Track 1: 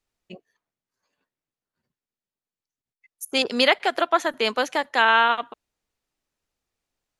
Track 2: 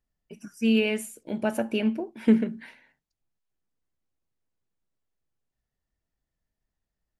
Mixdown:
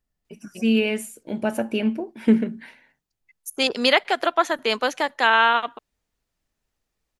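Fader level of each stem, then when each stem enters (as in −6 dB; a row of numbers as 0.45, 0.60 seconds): +0.5, +2.5 decibels; 0.25, 0.00 seconds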